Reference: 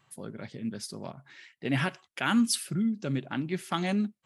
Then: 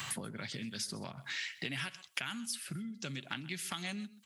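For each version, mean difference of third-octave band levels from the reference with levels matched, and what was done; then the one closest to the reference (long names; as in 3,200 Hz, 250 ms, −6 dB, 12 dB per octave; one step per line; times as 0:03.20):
9.0 dB: downward compressor 4 to 1, threshold −41 dBFS, peak gain reduction 17 dB
guitar amp tone stack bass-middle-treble 5-5-5
on a send: single-tap delay 128 ms −20.5 dB
on the sum: multiband upward and downward compressor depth 100%
level +16 dB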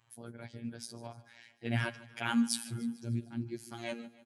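6.0 dB: gain on a spectral selection 0:02.85–0:03.79, 430–4,000 Hz −12 dB
comb filter 7.3 ms, depth 79%
phases set to zero 117 Hz
on a send: repeating echo 149 ms, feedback 57%, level −19 dB
on the sum: level −5.5 dB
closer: second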